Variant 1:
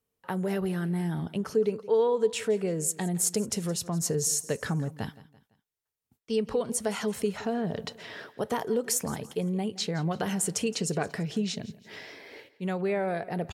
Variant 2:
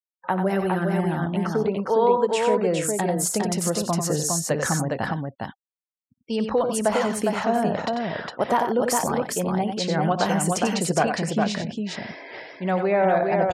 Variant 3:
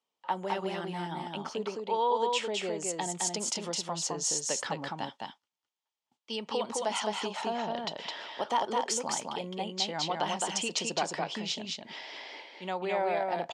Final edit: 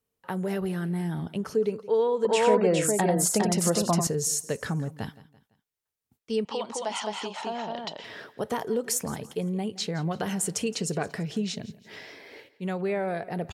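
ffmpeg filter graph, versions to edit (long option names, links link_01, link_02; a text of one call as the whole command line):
ffmpeg -i take0.wav -i take1.wav -i take2.wav -filter_complex "[0:a]asplit=3[link_01][link_02][link_03];[link_01]atrim=end=2.252[link_04];[1:a]atrim=start=2.248:end=4.072[link_05];[link_02]atrim=start=4.068:end=6.452[link_06];[2:a]atrim=start=6.448:end=8.042[link_07];[link_03]atrim=start=8.038[link_08];[link_04][link_05]acrossfade=duration=0.004:curve1=hsin:curve2=hsin[link_09];[link_09][link_06]acrossfade=duration=0.004:curve1=hsin:curve2=hsin[link_10];[link_10][link_07]acrossfade=duration=0.004:curve1=hsin:curve2=hsin[link_11];[link_11][link_08]acrossfade=duration=0.004:curve1=hsin:curve2=hsin" out.wav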